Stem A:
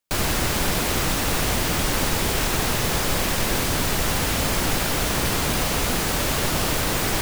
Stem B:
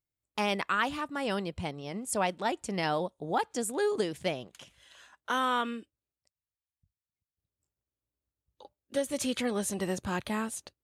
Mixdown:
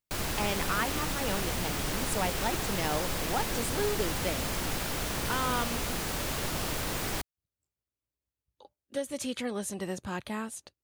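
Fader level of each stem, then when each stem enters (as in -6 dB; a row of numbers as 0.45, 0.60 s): -10.0, -3.0 dB; 0.00, 0.00 s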